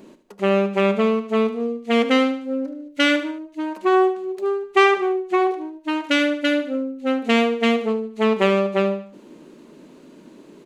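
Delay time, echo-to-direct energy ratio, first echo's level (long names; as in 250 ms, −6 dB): 75 ms, −11.0 dB, −12.0 dB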